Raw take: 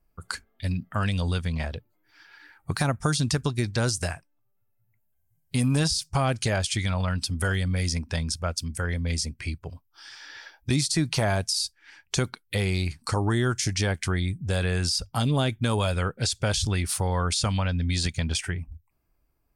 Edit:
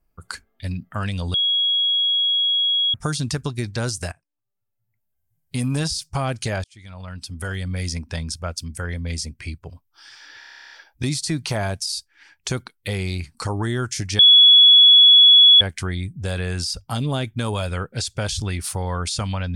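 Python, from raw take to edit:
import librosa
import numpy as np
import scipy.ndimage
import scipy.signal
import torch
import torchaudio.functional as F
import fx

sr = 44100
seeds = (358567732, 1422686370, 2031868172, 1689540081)

y = fx.edit(x, sr, fx.bleep(start_s=1.34, length_s=1.6, hz=3320.0, db=-16.5),
    fx.fade_in_from(start_s=4.12, length_s=1.51, floor_db=-20.0),
    fx.fade_in_span(start_s=6.64, length_s=1.18),
    fx.stutter(start_s=10.39, slice_s=0.03, count=12),
    fx.insert_tone(at_s=13.86, length_s=1.42, hz=3380.0, db=-7.0), tone=tone)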